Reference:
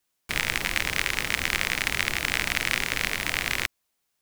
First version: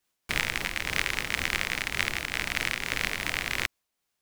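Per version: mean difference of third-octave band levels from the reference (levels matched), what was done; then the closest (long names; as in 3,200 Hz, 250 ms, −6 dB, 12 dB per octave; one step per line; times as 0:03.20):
1.5 dB: high-shelf EQ 7,200 Hz −4 dB
speech leveller 2 s
amplitude modulation by smooth noise, depth 55%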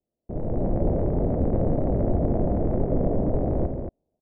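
24.0 dB: Chebyshev low-pass filter 640 Hz, order 4
automatic gain control gain up to 9.5 dB
on a send: loudspeakers that aren't time-aligned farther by 49 metres −10 dB, 78 metres −7 dB
on the sum: level +5 dB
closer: first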